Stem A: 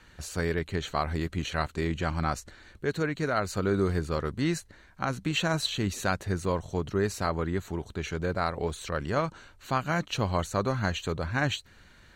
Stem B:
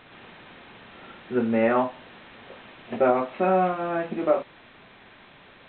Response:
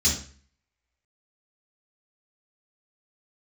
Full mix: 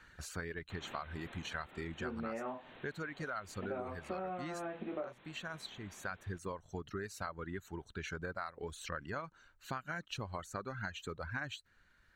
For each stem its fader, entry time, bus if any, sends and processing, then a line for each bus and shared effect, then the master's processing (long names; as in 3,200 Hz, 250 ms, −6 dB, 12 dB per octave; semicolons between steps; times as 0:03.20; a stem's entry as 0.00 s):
0:04.64 −7.5 dB → 0:05.04 −17.5 dB → 0:05.89 −17.5 dB → 0:06.24 −6 dB, 0.00 s, no send, reverb reduction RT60 2 s; parametric band 1,500 Hz +8.5 dB 0.83 octaves
+3.0 dB, 0.70 s, no send, automatic ducking −11 dB, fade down 1.95 s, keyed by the first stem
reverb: not used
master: downward compressor 6 to 1, threshold −38 dBFS, peak gain reduction 15 dB